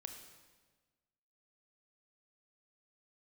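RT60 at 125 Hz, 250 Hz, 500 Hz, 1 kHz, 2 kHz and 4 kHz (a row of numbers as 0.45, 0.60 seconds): 1.6, 1.6, 1.4, 1.3, 1.3, 1.2 seconds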